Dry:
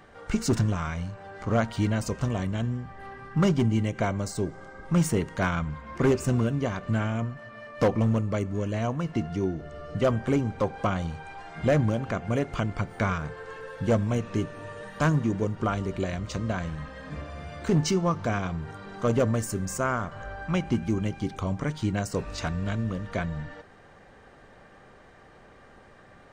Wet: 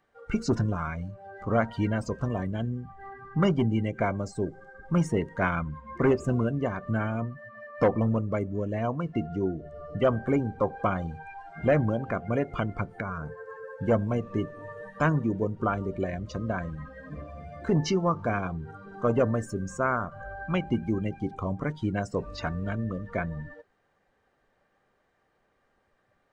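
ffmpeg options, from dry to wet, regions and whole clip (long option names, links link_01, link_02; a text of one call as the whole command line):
ffmpeg -i in.wav -filter_complex "[0:a]asettb=1/sr,asplit=3[link_01][link_02][link_03];[link_01]atrim=end=13.004[link_04];[link_02]atrim=start=13:end=13.81,asetpts=PTS-STARTPTS,afade=type=in:duration=0.004:curve=qsin,afade=type=out:start_time=0.806:duration=0.004:curve=qsin,highpass=43,equalizer=frequency=3300:width_type=o:width=0.82:gain=-9.5,acompressor=threshold=-28dB:ratio=6:attack=3.2:release=140:knee=1:detection=peak[link_05];[link_03]atrim=start=13.806[link_06];[link_04][link_05]acrossfade=duration=0.004:curve1=hsin:curve2=qsin[link_07];[link_07][link_06]acrossfade=duration=0.004:curve1=qsin:curve2=hsin,afftdn=noise_reduction=19:noise_floor=-36,acrossover=split=5400[link_08][link_09];[link_09]acompressor=threshold=-53dB:ratio=4:attack=1:release=60[link_10];[link_08][link_10]amix=inputs=2:normalize=0,lowshelf=frequency=220:gain=-5.5,volume=1.5dB" out.wav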